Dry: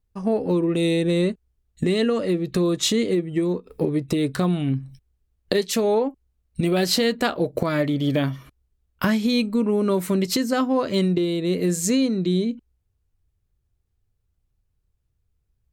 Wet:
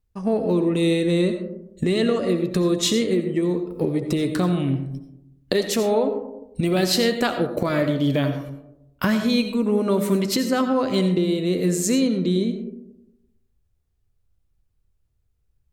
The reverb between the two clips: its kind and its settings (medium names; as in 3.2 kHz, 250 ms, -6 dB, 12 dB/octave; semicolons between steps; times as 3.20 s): algorithmic reverb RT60 0.9 s, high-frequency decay 0.3×, pre-delay 45 ms, DRR 7.5 dB